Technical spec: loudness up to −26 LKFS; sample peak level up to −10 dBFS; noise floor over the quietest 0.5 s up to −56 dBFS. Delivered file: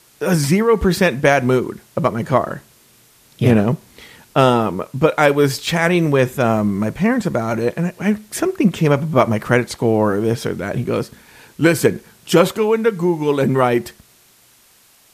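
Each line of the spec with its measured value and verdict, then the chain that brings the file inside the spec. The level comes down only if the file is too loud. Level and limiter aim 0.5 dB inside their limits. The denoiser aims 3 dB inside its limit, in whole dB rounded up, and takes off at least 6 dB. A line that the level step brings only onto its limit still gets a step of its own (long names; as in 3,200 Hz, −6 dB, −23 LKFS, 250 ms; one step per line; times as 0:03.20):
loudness −17.5 LKFS: out of spec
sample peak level −1.5 dBFS: out of spec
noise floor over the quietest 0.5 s −52 dBFS: out of spec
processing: level −9 dB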